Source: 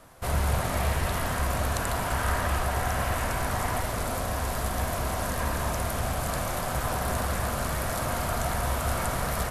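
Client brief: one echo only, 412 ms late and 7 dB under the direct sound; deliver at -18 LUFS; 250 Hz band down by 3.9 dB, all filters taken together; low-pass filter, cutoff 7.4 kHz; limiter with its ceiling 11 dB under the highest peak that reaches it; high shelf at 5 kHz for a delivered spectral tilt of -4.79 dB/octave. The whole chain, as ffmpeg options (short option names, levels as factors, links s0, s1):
-af "lowpass=7400,equalizer=f=250:t=o:g=-5.5,highshelf=f=5000:g=-4.5,alimiter=level_in=1.26:limit=0.0631:level=0:latency=1,volume=0.794,aecho=1:1:412:0.447,volume=6.68"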